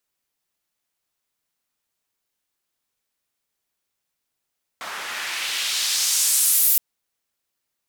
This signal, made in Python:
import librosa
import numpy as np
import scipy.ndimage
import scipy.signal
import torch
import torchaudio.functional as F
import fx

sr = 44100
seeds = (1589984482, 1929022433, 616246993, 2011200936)

y = fx.riser_noise(sr, seeds[0], length_s=1.97, colour='white', kind='bandpass', start_hz=1100.0, end_hz=15000.0, q=1.2, swell_db=10, law='exponential')